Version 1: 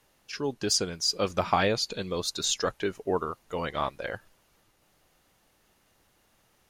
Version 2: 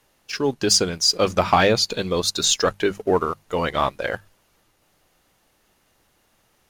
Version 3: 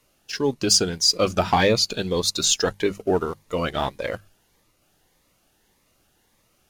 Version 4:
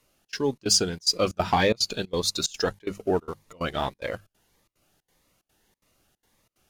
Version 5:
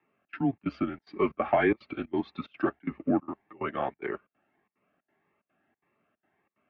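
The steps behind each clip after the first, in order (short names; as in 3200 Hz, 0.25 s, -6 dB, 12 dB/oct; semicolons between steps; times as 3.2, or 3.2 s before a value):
notches 50/100/150/200 Hz; sample leveller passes 1; gain +5 dB
cascading phaser rising 1.7 Hz
step gate "xxx.xxx.x" 183 bpm -24 dB; gain -3 dB
mistuned SSB -130 Hz 310–2500 Hz; notch comb 490 Hz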